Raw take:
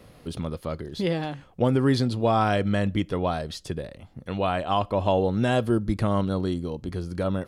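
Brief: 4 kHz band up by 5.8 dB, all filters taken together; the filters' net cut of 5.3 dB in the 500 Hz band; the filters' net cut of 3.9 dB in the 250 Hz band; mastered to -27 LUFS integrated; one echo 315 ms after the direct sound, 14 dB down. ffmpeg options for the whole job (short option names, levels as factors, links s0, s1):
-af "equalizer=f=250:t=o:g=-3.5,equalizer=f=500:t=o:g=-6,equalizer=f=4000:t=o:g=7.5,aecho=1:1:315:0.2,volume=1.12"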